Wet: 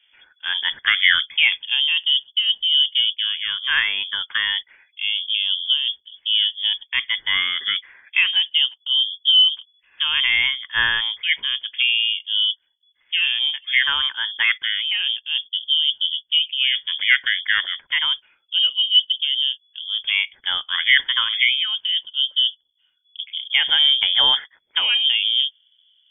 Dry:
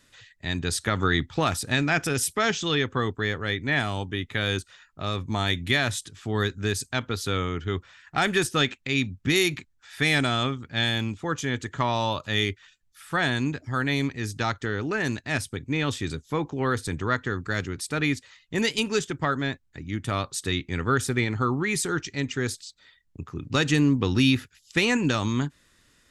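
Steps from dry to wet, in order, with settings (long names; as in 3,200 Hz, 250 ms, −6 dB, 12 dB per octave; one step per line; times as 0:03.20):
0:04.11–0:04.59: high-shelf EQ 2,300 Hz −9.5 dB
auto-filter low-pass sine 0.3 Hz 390–1,700 Hz
voice inversion scrambler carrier 3,400 Hz
level +4 dB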